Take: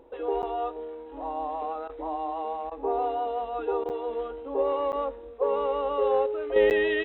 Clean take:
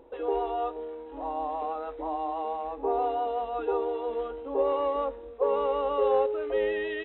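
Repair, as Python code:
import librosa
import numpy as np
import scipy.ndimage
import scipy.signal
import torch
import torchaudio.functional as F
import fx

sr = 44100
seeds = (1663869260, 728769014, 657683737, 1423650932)

y = fx.fix_interpolate(x, sr, at_s=(0.42, 3.89, 4.92, 6.7), length_ms=9.1)
y = fx.fix_interpolate(y, sr, at_s=(1.88, 2.7, 3.84), length_ms=13.0)
y = fx.gain(y, sr, db=fx.steps((0.0, 0.0), (6.56, -7.0)))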